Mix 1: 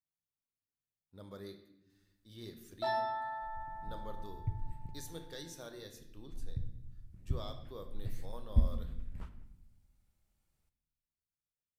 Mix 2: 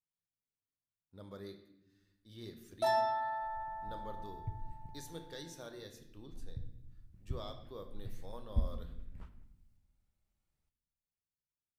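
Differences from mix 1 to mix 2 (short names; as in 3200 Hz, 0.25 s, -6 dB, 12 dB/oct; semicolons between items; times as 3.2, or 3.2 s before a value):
first sound: remove rippled Chebyshev low-pass 5300 Hz, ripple 6 dB; second sound -5.0 dB; master: add high shelf 6600 Hz -5 dB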